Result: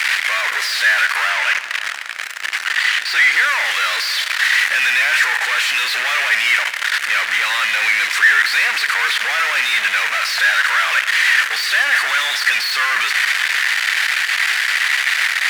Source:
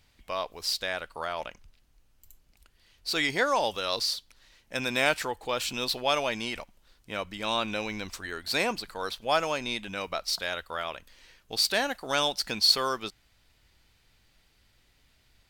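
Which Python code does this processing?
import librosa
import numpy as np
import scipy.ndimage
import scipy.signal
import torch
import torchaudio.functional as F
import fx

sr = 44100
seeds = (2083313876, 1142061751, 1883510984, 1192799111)

y = fx.delta_mod(x, sr, bps=64000, step_db=-25.0)
y = fx.high_shelf(y, sr, hz=7800.0, db=-10.0, at=(1.3, 3.35))
y = fx.fuzz(y, sr, gain_db=41.0, gate_db=-39.0)
y = fx.highpass_res(y, sr, hz=1800.0, q=3.3)
y = fx.high_shelf(y, sr, hz=3000.0, db=-12.0)
y = fx.rev_schroeder(y, sr, rt60_s=2.9, comb_ms=38, drr_db=11.5)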